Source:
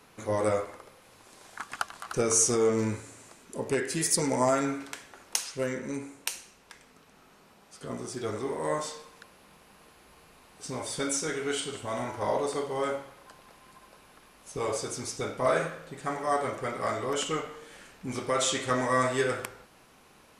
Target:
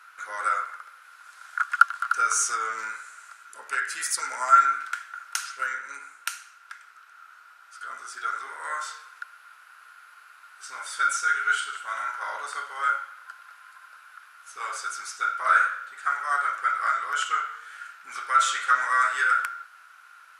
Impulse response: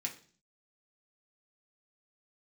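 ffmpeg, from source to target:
-filter_complex "[0:a]asplit=2[s0][s1];[s1]asoftclip=type=tanh:threshold=0.1,volume=0.251[s2];[s0][s2]amix=inputs=2:normalize=0,highpass=f=1400:t=q:w=13,volume=0.668"

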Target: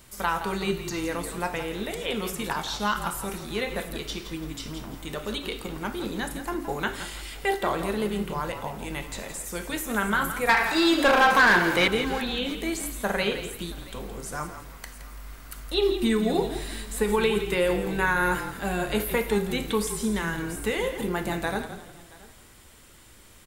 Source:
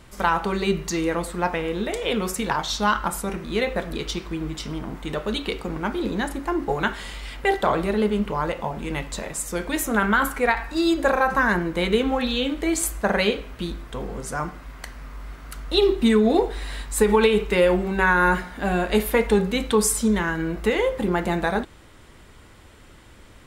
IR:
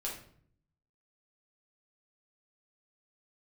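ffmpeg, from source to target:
-filter_complex "[0:a]asplit=2[s0][s1];[1:a]atrim=start_sample=2205[s2];[s1][s2]afir=irnorm=-1:irlink=0,volume=0.266[s3];[s0][s3]amix=inputs=2:normalize=0,asettb=1/sr,asplit=3[s4][s5][s6];[s4]atrim=end=10.494[s7];[s5]atrim=start=10.49:end=11.88,asetpts=PTS-STARTPTS,afade=t=in:d=0.004:c=qsin,afade=t=out:st=1.386:d=0.004:c=qsin,asplit=2[s8][s9];[s9]highpass=f=720:p=1,volume=11.2,asoftclip=type=tanh:threshold=0.668[s10];[s8][s10]amix=inputs=2:normalize=0,lowpass=f=7500:p=1,volume=0.501[s11];[s6]atrim=start=11.876[s12];[s7][s11]acrossfade=d=0.004:c1=hsin:c2=qsin[s13];[s13][s12]acrossfade=d=0.004:c1=qsin:c2=hsin,asplit=2[s14][s15];[s15]aecho=0:1:675:0.075[s16];[s14][s16]amix=inputs=2:normalize=0,acrossover=split=3600[s17][s18];[s18]acompressor=threshold=0.0112:ratio=4:attack=1:release=60[s19];[s17][s19]amix=inputs=2:normalize=0,aemphasis=mode=production:type=75kf,asplit=4[s20][s21][s22][s23];[s21]adelay=168,afreqshift=-41,volume=0.299[s24];[s22]adelay=336,afreqshift=-82,volume=0.0923[s25];[s23]adelay=504,afreqshift=-123,volume=0.0288[s26];[s20][s24][s25][s26]amix=inputs=4:normalize=0,volume=0.398"

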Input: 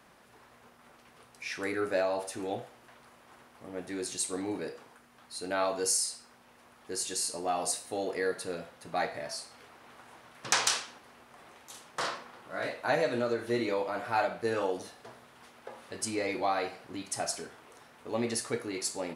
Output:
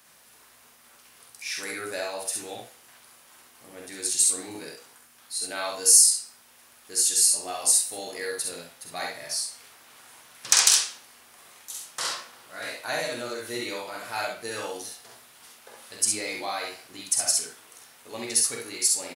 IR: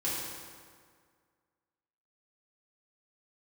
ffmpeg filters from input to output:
-af "aecho=1:1:47|66:0.562|0.668,crystalizer=i=8:c=0,volume=0.398"

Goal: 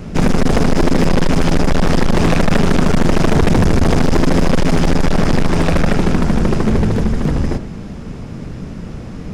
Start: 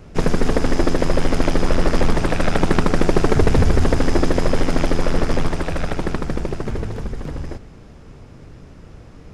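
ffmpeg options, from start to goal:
-filter_complex "[0:a]equalizer=f=200:w=1.8:g=9,bandreject=f=48.14:t=h:w=4,bandreject=f=96.28:t=h:w=4,bandreject=f=144.42:t=h:w=4,bandreject=f=192.56:t=h:w=4,bandreject=f=240.7:t=h:w=4,bandreject=f=288.84:t=h:w=4,bandreject=f=336.98:t=h:w=4,bandreject=f=385.12:t=h:w=4,bandreject=f=433.26:t=h:w=4,bandreject=f=481.4:t=h:w=4,bandreject=f=529.54:t=h:w=4,bandreject=f=577.68:t=h:w=4,bandreject=f=625.82:t=h:w=4,bandreject=f=673.96:t=h:w=4,bandreject=f=722.1:t=h:w=4,bandreject=f=770.24:t=h:w=4,bandreject=f=818.38:t=h:w=4,bandreject=f=866.52:t=h:w=4,bandreject=f=914.66:t=h:w=4,bandreject=f=962.8:t=h:w=4,bandreject=f=1010.94:t=h:w=4,bandreject=f=1059.08:t=h:w=4,bandreject=f=1107.22:t=h:w=4,bandreject=f=1155.36:t=h:w=4,bandreject=f=1203.5:t=h:w=4,bandreject=f=1251.64:t=h:w=4,bandreject=f=1299.78:t=h:w=4,bandreject=f=1347.92:t=h:w=4,bandreject=f=1396.06:t=h:w=4,bandreject=f=1444.2:t=h:w=4,bandreject=f=1492.34:t=h:w=4,bandreject=f=1540.48:t=h:w=4,bandreject=f=1588.62:t=h:w=4,bandreject=f=1636.76:t=h:w=4,bandreject=f=1684.9:t=h:w=4,bandreject=f=1733.04:t=h:w=4,asplit=2[s0][s1];[s1]alimiter=limit=0.266:level=0:latency=1:release=70,volume=0.841[s2];[s0][s2]amix=inputs=2:normalize=0,asoftclip=type=hard:threshold=0.188,volume=1.88"

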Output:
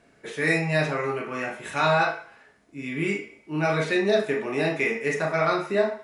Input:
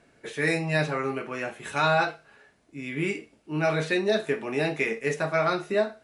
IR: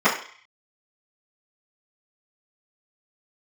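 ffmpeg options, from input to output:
-filter_complex "[0:a]asplit=2[s0][s1];[1:a]atrim=start_sample=2205,highshelf=f=3500:g=9,adelay=24[s2];[s1][s2]afir=irnorm=-1:irlink=0,volume=0.0631[s3];[s0][s3]amix=inputs=2:normalize=0"

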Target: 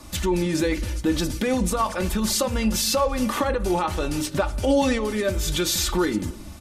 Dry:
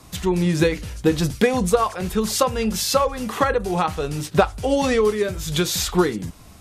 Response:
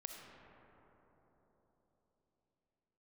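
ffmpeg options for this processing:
-filter_complex "[0:a]alimiter=limit=0.15:level=0:latency=1:release=69,aecho=1:1:3.4:0.65,asplit=2[s0][s1];[1:a]atrim=start_sample=2205,afade=t=out:st=0.37:d=0.01,atrim=end_sample=16758,lowshelf=f=170:g=10.5[s2];[s1][s2]afir=irnorm=-1:irlink=0,volume=0.335[s3];[s0][s3]amix=inputs=2:normalize=0"

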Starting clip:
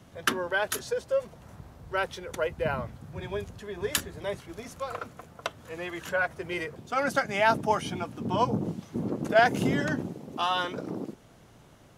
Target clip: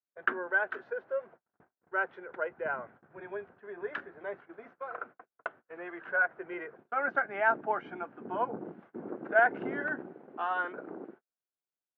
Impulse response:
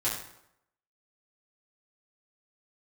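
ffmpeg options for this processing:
-af "agate=range=0.00708:threshold=0.00708:ratio=16:detection=peak,highpass=310,equalizer=f=370:t=q:w=4:g=5,equalizer=f=740:t=q:w=4:g=4,equalizer=f=1500:t=q:w=4:g=10,lowpass=f=2100:w=0.5412,lowpass=f=2100:w=1.3066,volume=0.422"

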